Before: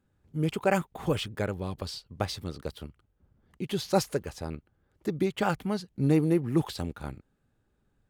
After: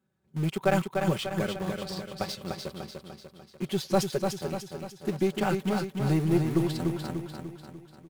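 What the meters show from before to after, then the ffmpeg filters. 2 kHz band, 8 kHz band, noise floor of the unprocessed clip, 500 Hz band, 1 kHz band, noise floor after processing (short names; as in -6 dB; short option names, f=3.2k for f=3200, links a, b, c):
+1.0 dB, +1.5 dB, -73 dBFS, +1.0 dB, +1.0 dB, -60 dBFS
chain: -filter_complex "[0:a]highpass=f=80:w=0.5412,highpass=f=80:w=1.3066,aecho=1:1:5.3:0.74,asplit=2[a][b];[b]acrusher=bits=4:mix=0:aa=0.000001,volume=-9dB[c];[a][c]amix=inputs=2:normalize=0,aeval=exprs='(tanh(2.51*val(0)+0.3)-tanh(0.3))/2.51':c=same,aecho=1:1:296|592|888|1184|1480|1776:0.562|0.287|0.146|0.0746|0.038|0.0194,volume=-4dB"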